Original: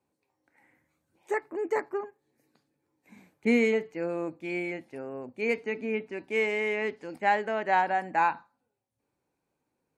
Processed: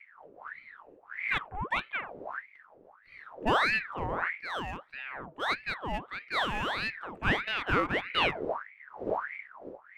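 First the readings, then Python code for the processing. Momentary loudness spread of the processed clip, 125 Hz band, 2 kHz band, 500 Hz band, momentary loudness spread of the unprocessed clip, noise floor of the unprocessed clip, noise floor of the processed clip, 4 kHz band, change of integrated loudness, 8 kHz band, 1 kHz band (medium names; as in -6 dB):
17 LU, +6.5 dB, +2.0 dB, -7.0 dB, 11 LU, -82 dBFS, -59 dBFS, +10.5 dB, -2.5 dB, no reading, -2.5 dB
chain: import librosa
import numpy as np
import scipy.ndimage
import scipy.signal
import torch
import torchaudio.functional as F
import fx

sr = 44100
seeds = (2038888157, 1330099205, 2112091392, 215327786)

y = fx.wiener(x, sr, points=9)
y = fx.dmg_wind(y, sr, seeds[0], corner_hz=120.0, level_db=-39.0)
y = fx.ring_lfo(y, sr, carrier_hz=1300.0, swing_pct=70, hz=1.6)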